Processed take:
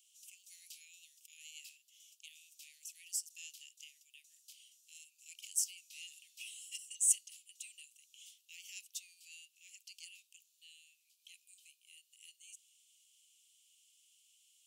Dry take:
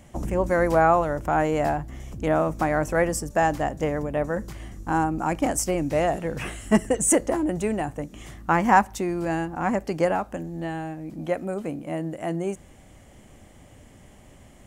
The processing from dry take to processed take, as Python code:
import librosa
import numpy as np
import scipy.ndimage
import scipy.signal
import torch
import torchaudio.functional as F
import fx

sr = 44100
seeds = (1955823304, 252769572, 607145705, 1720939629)

y = scipy.signal.sosfilt(scipy.signal.butter(12, 2700.0, 'highpass', fs=sr, output='sos'), x)
y = F.gain(torch.from_numpy(y), -6.5).numpy()